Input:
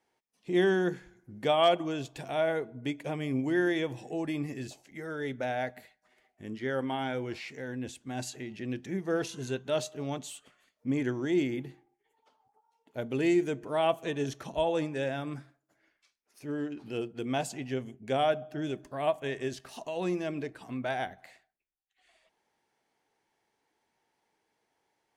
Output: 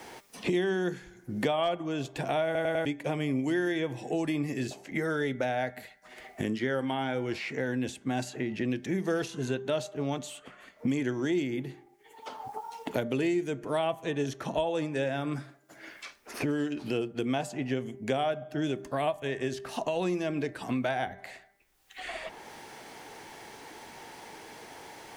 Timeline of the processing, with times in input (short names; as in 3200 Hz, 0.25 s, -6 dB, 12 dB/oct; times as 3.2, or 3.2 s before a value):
2.45 stutter in place 0.10 s, 4 plays
whole clip: de-hum 198.8 Hz, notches 11; three-band squash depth 100%; gain +1 dB